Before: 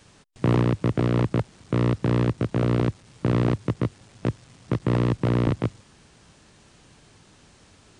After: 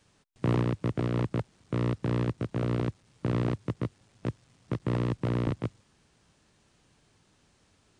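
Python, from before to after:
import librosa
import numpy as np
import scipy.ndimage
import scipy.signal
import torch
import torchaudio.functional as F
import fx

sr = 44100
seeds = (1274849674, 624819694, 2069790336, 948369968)

y = fx.upward_expand(x, sr, threshold_db=-31.0, expansion=1.5)
y = y * librosa.db_to_amplitude(-5.0)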